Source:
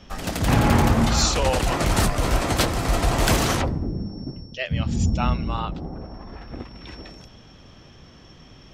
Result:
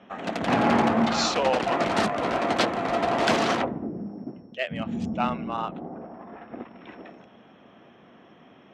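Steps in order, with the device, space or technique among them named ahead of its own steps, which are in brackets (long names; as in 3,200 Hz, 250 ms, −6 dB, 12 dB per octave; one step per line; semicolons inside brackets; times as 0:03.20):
adaptive Wiener filter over 9 samples
high-pass filter 290 Hz 12 dB per octave
inside a cardboard box (low-pass filter 4,500 Hz 12 dB per octave; hollow resonant body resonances 210/690 Hz, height 6 dB)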